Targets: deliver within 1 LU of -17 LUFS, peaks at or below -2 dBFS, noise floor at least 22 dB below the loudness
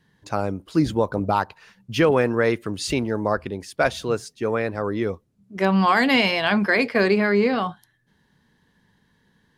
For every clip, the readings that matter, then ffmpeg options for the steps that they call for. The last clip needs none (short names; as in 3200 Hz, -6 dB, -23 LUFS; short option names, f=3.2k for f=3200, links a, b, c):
loudness -22.0 LUFS; peak -8.0 dBFS; loudness target -17.0 LUFS
-> -af "volume=5dB"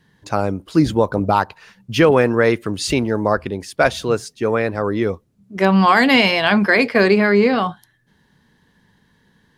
loudness -17.0 LUFS; peak -3.0 dBFS; noise floor -61 dBFS